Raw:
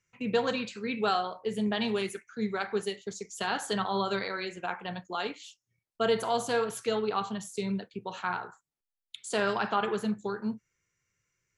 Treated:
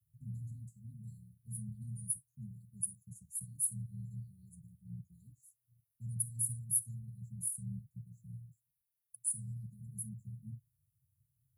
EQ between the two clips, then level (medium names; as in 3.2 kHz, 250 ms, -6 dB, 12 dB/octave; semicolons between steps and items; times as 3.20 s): high-pass 75 Hz; Chebyshev band-stop 140–9700 Hz, order 5; dynamic bell 8.2 kHz, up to +4 dB, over -59 dBFS, Q 1.3; +11.0 dB